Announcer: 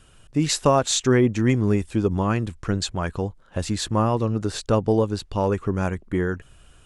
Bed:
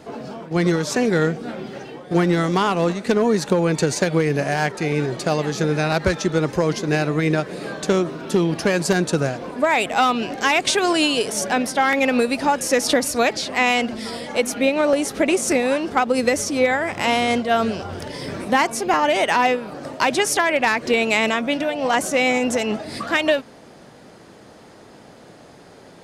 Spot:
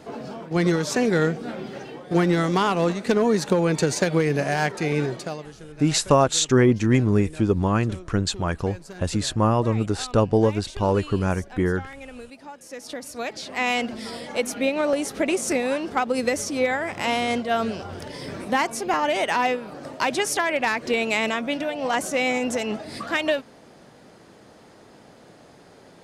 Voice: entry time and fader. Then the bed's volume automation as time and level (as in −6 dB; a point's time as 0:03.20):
5.45 s, +1.0 dB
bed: 0:05.07 −2 dB
0:05.60 −22 dB
0:12.58 −22 dB
0:13.73 −4.5 dB